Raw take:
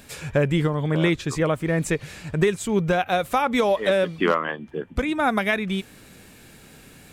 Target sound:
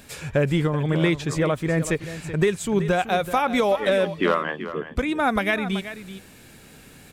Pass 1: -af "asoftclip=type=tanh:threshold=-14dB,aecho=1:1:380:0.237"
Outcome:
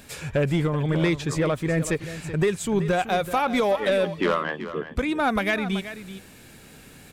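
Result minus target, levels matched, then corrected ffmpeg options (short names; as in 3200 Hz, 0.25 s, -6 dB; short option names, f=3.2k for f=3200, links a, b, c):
soft clip: distortion +14 dB
-af "asoftclip=type=tanh:threshold=-5dB,aecho=1:1:380:0.237"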